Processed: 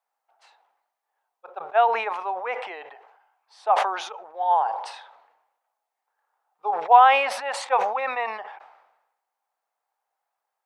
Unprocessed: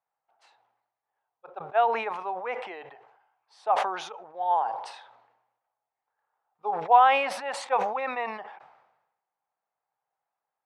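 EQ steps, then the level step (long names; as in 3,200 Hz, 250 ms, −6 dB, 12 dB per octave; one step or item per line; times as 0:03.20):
high-pass filter 460 Hz 12 dB per octave
+4.5 dB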